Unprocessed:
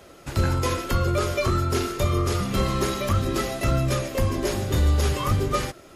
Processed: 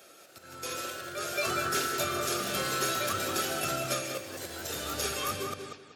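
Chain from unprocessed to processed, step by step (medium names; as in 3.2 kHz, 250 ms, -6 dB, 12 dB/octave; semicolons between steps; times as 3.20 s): tape stop on the ending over 0.40 s; tilt EQ +2.5 dB/octave; slow attack 535 ms; bass shelf 270 Hz -5 dB; comb of notches 1 kHz; on a send: filtered feedback delay 189 ms, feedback 27%, low-pass 4.3 kHz, level -5.5 dB; on the sum: ever faster or slower copies 204 ms, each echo +2 st, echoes 3, each echo -6 dB; high-pass 82 Hz; band-stop 840 Hz, Q 25; trim -5 dB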